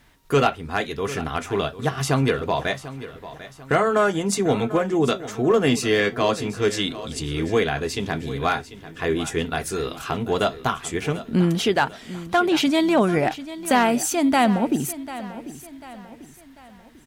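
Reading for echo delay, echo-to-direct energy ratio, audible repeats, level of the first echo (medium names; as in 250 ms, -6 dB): 744 ms, -14.0 dB, 3, -15.0 dB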